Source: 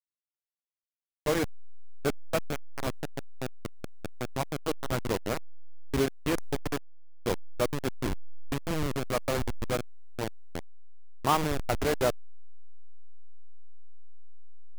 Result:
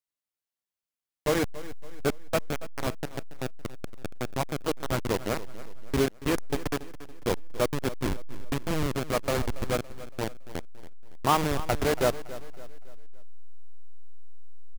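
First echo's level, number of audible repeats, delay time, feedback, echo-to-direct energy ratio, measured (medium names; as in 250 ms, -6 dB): -16.0 dB, 3, 281 ms, 44%, -15.0 dB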